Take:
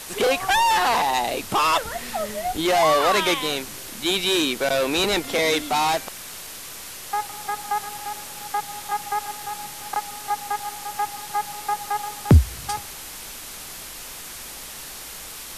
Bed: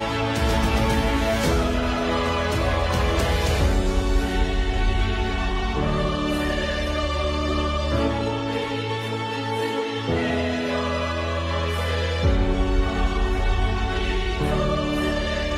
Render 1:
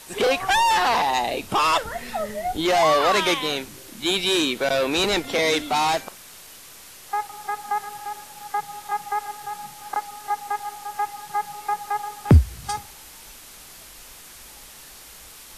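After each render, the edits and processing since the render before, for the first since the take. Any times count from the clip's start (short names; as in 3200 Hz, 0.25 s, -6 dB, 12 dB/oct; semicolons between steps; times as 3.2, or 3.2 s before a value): noise print and reduce 7 dB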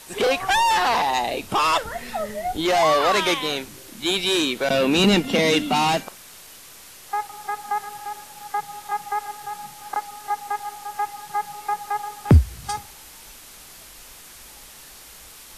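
4.69–6.03 small resonant body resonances 200/2800 Hz, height 16 dB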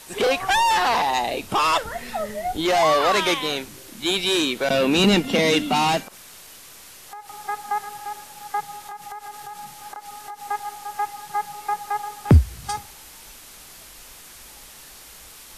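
6.05–7.28 compressor, threshold -36 dBFS; 8.74–10.4 compressor 10:1, threshold -32 dBFS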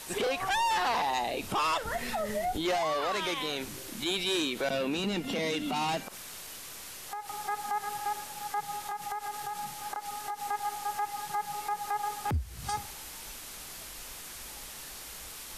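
compressor, threshold -25 dBFS, peak gain reduction 15.5 dB; limiter -23.5 dBFS, peak gain reduction 11 dB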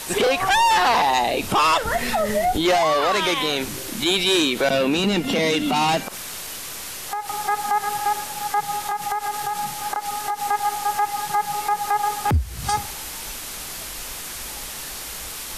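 gain +11 dB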